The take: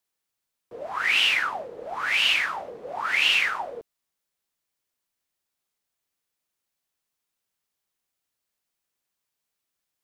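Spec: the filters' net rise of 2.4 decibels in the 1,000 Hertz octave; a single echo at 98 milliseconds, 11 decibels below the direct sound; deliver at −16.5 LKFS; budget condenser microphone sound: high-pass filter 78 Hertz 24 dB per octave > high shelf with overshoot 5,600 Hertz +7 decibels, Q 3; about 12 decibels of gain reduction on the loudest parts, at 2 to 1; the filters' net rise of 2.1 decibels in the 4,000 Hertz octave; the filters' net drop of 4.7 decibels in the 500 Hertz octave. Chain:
parametric band 500 Hz −8 dB
parametric band 1,000 Hz +5 dB
parametric band 4,000 Hz +7 dB
downward compressor 2 to 1, threshold −36 dBFS
high-pass filter 78 Hz 24 dB per octave
high shelf with overshoot 5,600 Hz +7 dB, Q 3
single-tap delay 98 ms −11 dB
level +15 dB

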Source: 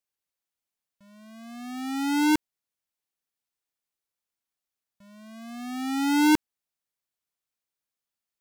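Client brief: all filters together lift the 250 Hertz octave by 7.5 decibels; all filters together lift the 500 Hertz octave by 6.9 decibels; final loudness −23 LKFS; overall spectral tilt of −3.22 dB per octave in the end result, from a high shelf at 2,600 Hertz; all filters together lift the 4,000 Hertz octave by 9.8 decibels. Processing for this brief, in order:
parametric band 250 Hz +7.5 dB
parametric band 500 Hz +4.5 dB
high-shelf EQ 2,600 Hz +6.5 dB
parametric band 4,000 Hz +6.5 dB
level −4.5 dB

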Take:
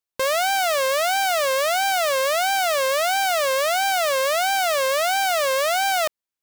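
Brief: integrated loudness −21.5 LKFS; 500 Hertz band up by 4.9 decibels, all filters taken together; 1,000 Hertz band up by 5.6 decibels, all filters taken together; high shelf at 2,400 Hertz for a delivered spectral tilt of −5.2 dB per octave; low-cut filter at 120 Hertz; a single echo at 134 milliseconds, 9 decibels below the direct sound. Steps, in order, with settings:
high-pass filter 120 Hz
parametric band 500 Hz +3.5 dB
parametric band 1,000 Hz +5.5 dB
high-shelf EQ 2,400 Hz +6.5 dB
single-tap delay 134 ms −9 dB
level −7 dB

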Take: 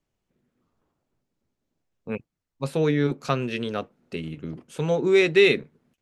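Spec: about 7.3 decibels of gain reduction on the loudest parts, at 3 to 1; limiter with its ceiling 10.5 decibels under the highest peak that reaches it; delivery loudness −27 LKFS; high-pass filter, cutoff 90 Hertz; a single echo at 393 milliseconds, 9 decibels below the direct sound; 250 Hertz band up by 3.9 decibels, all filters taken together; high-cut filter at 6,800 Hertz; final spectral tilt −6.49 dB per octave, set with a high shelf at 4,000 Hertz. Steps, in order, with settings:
high-pass filter 90 Hz
low-pass filter 6,800 Hz
parametric band 250 Hz +6 dB
high-shelf EQ 4,000 Hz −6 dB
downward compressor 3 to 1, threshold −21 dBFS
brickwall limiter −20.5 dBFS
single-tap delay 393 ms −9 dB
level +3.5 dB

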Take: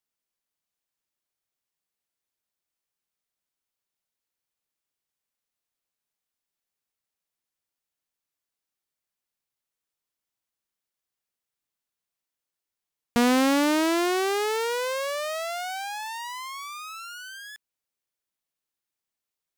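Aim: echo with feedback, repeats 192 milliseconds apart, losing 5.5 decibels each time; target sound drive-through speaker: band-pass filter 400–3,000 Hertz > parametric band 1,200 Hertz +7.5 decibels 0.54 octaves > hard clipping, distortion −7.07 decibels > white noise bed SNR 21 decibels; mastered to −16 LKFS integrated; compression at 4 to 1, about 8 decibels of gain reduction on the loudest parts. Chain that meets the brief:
downward compressor 4 to 1, threshold −28 dBFS
band-pass filter 400–3,000 Hz
parametric band 1,200 Hz +7.5 dB 0.54 octaves
repeating echo 192 ms, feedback 53%, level −5.5 dB
hard clipping −30.5 dBFS
white noise bed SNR 21 dB
level +18 dB

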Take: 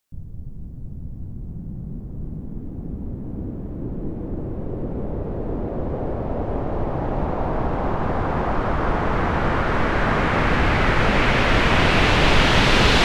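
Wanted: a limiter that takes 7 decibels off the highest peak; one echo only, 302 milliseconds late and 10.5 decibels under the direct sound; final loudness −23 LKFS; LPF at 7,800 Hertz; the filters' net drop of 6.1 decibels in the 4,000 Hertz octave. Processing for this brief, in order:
low-pass filter 7,800 Hz
parametric band 4,000 Hz −8.5 dB
brickwall limiter −11 dBFS
single-tap delay 302 ms −10.5 dB
level +1 dB

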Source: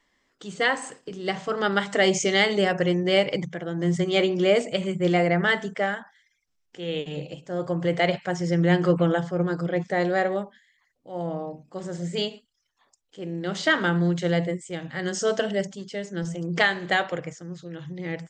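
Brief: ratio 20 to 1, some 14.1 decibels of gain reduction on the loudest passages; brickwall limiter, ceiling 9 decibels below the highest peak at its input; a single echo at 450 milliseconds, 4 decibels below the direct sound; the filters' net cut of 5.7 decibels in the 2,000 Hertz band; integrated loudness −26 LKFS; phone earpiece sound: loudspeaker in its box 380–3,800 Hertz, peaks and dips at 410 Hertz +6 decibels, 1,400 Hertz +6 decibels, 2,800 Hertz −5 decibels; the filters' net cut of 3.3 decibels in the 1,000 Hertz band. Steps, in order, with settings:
parametric band 1,000 Hz −5 dB
parametric band 2,000 Hz −7 dB
downward compressor 20 to 1, threshold −30 dBFS
brickwall limiter −27.5 dBFS
loudspeaker in its box 380–3,800 Hz, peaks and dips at 410 Hz +6 dB, 1,400 Hz +6 dB, 2,800 Hz −5 dB
single-tap delay 450 ms −4 dB
level +11.5 dB

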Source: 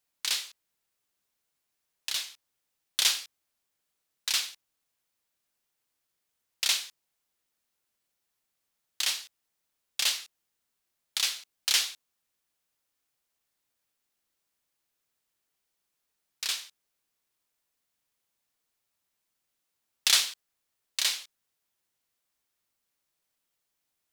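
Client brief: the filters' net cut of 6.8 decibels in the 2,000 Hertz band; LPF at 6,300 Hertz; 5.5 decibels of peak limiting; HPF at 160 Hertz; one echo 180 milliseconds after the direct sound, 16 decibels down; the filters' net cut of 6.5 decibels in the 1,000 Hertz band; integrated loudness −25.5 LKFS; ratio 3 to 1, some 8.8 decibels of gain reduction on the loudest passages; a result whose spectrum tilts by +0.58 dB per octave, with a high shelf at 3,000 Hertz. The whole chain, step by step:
high-pass filter 160 Hz
low-pass filter 6,300 Hz
parametric band 1,000 Hz −6 dB
parametric band 2,000 Hz −5 dB
high-shelf EQ 3,000 Hz −5.5 dB
downward compressor 3 to 1, threshold −37 dBFS
brickwall limiter −25.5 dBFS
single-tap delay 180 ms −16 dB
level +16.5 dB

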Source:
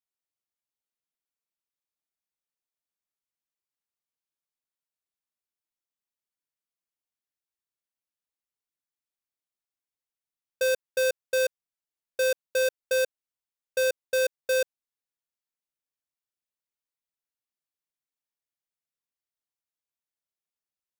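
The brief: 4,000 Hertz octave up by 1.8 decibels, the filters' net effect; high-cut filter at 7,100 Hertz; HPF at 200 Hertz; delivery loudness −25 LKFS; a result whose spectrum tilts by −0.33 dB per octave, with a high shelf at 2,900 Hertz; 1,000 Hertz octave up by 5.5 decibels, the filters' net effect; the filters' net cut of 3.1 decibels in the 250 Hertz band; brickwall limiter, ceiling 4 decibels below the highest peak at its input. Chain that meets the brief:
high-pass filter 200 Hz
low-pass filter 7,100 Hz
parametric band 250 Hz −5 dB
parametric band 1,000 Hz +7 dB
high-shelf EQ 2,900 Hz −4.5 dB
parametric band 4,000 Hz +5.5 dB
level +6 dB
brickwall limiter −13.5 dBFS

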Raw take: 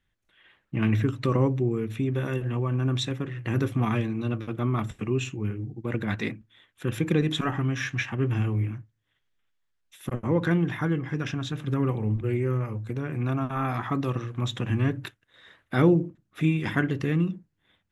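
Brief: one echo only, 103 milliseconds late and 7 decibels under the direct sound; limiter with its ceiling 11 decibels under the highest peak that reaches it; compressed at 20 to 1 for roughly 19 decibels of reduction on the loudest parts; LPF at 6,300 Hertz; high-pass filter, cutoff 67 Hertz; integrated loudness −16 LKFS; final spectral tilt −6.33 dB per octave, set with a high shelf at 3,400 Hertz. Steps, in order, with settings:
high-pass filter 67 Hz
low-pass filter 6,300 Hz
high-shelf EQ 3,400 Hz −4 dB
downward compressor 20 to 1, threshold −33 dBFS
brickwall limiter −32.5 dBFS
single-tap delay 103 ms −7 dB
level +25 dB

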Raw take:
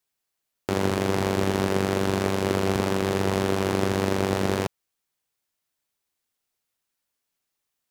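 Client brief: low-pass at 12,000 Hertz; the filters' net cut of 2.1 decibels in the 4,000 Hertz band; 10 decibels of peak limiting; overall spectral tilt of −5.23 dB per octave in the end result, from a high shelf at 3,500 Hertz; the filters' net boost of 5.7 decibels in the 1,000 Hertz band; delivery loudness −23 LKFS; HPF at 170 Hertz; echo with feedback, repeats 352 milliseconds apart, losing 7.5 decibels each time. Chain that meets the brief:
high-pass filter 170 Hz
low-pass filter 12,000 Hz
parametric band 1,000 Hz +7 dB
high-shelf EQ 3,500 Hz +6 dB
parametric band 4,000 Hz −7.5 dB
brickwall limiter −16.5 dBFS
repeating echo 352 ms, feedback 42%, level −7.5 dB
level +6 dB

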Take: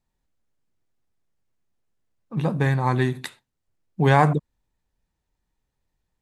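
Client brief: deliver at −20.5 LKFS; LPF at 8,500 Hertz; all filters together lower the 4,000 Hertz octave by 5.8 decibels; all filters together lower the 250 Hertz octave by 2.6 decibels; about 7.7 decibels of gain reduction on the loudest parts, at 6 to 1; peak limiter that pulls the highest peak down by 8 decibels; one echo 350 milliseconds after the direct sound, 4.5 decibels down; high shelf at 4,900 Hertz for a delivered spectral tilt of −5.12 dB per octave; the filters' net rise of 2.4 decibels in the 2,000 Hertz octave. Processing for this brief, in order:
low-pass filter 8,500 Hz
parametric band 250 Hz −4.5 dB
parametric band 2,000 Hz +5 dB
parametric band 4,000 Hz −7 dB
high-shelf EQ 4,900 Hz −4.5 dB
downward compressor 6 to 1, threshold −19 dBFS
brickwall limiter −18 dBFS
single-tap delay 350 ms −4.5 dB
level +9 dB

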